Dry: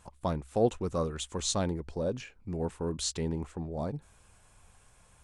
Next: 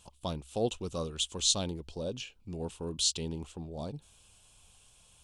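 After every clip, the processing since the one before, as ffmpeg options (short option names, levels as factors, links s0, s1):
-af "highshelf=f=2400:t=q:w=3:g=7.5,volume=0.596"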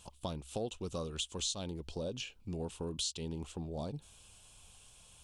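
-af "acompressor=threshold=0.0126:ratio=4,volume=1.26"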